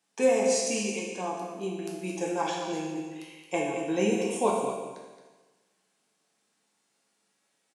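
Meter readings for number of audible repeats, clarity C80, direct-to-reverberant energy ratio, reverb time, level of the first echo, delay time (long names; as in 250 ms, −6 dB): 1, 2.5 dB, −3.5 dB, 1.3 s, −8.5 dB, 221 ms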